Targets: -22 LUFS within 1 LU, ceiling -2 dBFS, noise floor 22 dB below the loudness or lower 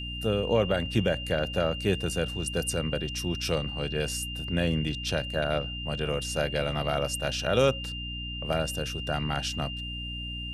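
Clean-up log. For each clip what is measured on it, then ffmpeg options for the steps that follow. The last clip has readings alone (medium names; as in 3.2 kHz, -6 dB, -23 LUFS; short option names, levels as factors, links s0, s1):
hum 60 Hz; highest harmonic 300 Hz; hum level -36 dBFS; steady tone 2.8 kHz; tone level -36 dBFS; loudness -29.0 LUFS; peak level -11.0 dBFS; loudness target -22.0 LUFS
-> -af "bandreject=f=60:t=h:w=6,bandreject=f=120:t=h:w=6,bandreject=f=180:t=h:w=6,bandreject=f=240:t=h:w=6,bandreject=f=300:t=h:w=6"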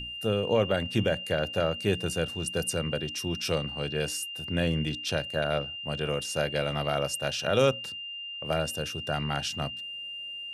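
hum not found; steady tone 2.8 kHz; tone level -36 dBFS
-> -af "bandreject=f=2800:w=30"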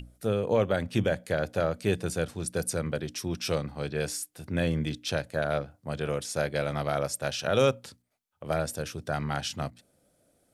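steady tone not found; loudness -30.0 LUFS; peak level -11.5 dBFS; loudness target -22.0 LUFS
-> -af "volume=2.51"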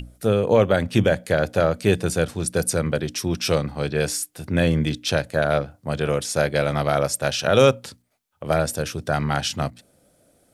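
loudness -22.0 LUFS; peak level -3.5 dBFS; noise floor -63 dBFS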